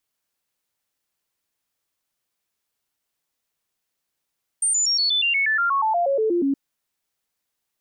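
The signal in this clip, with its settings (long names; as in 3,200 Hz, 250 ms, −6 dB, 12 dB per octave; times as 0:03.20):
stepped sweep 8,830 Hz down, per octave 3, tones 16, 0.12 s, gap 0.00 s −17.5 dBFS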